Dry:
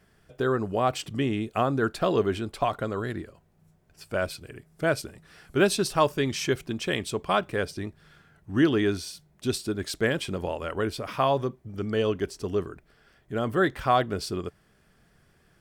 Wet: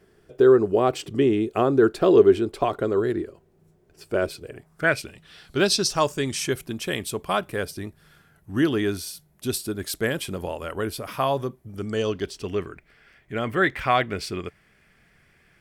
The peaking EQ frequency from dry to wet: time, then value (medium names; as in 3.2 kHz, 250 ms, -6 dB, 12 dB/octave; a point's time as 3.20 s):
peaking EQ +13 dB 0.71 oct
4.38 s 380 Hz
4.97 s 2.4 kHz
6.64 s 12 kHz
11.71 s 12 kHz
12.53 s 2.2 kHz